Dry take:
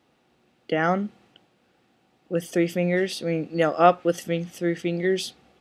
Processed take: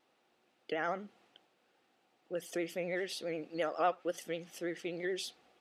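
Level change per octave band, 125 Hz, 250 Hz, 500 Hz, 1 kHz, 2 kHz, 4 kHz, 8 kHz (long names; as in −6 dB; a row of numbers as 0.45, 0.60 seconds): −21.5, −16.0, −13.0, −13.5, −11.0, −9.5, −9.0 decibels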